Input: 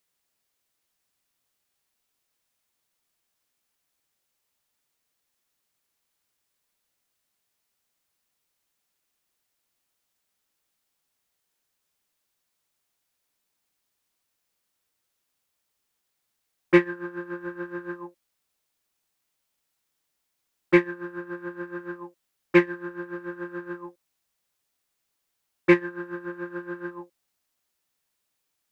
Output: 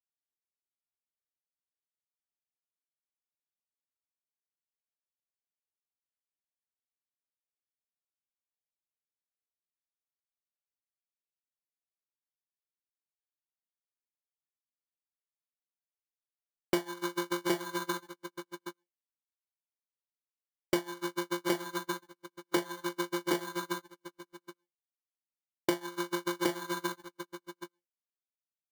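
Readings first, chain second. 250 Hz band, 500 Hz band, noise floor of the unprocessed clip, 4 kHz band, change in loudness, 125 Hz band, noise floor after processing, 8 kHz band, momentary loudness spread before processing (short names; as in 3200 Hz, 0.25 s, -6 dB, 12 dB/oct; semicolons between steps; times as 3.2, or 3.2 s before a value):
-8.5 dB, -8.0 dB, -79 dBFS, +6.5 dB, -8.0 dB, -9.5 dB, under -85 dBFS, n/a, 18 LU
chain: dynamic EQ 1300 Hz, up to +3 dB, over -40 dBFS, Q 1.4; sample-and-hold 17×; HPF 140 Hz 24 dB/oct; low shelf 200 Hz -3 dB; echo 0.766 s -4.5 dB; gate -35 dBFS, range -44 dB; compressor 20:1, threshold -30 dBFS, peak gain reduction 19.5 dB; gain +3.5 dB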